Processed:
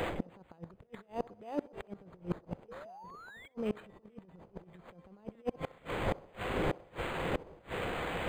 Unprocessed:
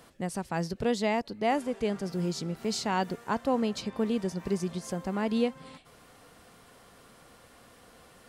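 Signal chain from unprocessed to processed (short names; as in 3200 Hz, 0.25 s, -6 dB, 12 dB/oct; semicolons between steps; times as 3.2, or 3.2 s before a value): wind noise 550 Hz -42 dBFS; treble ducked by the level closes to 2600 Hz, closed at -28 dBFS; thirty-one-band EQ 250 Hz -7 dB, 500 Hz +4 dB, 4000 Hz -6 dB; negative-ratio compressor -35 dBFS, ratio -0.5; resonant high shelf 2800 Hz +9.5 dB, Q 3; painted sound rise, 2.68–3.48, 450–2300 Hz -29 dBFS; flipped gate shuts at -29 dBFS, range -30 dB; on a send: narrowing echo 64 ms, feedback 57%, band-pass 640 Hz, level -19 dB; on the sum: decimation joined by straight lines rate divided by 8×; gain +9.5 dB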